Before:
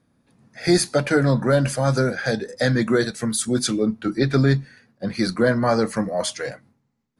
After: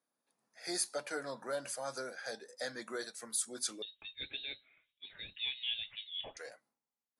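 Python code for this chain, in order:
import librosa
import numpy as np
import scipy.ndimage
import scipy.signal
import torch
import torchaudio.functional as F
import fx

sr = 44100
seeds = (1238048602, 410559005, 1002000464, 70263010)

y = scipy.signal.sosfilt(scipy.signal.butter(2, 840.0, 'highpass', fs=sr, output='sos'), x)
y = fx.peak_eq(y, sr, hz=2100.0, db=-10.5, octaves=2.7)
y = fx.freq_invert(y, sr, carrier_hz=4000, at=(3.82, 6.37))
y = F.gain(torch.from_numpy(y), -7.5).numpy()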